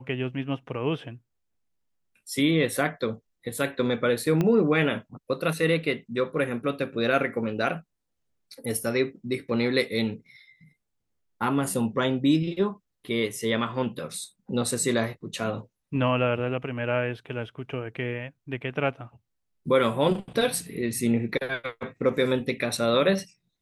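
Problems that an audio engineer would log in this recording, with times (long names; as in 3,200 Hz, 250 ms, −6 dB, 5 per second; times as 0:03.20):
0:04.41: click −13 dBFS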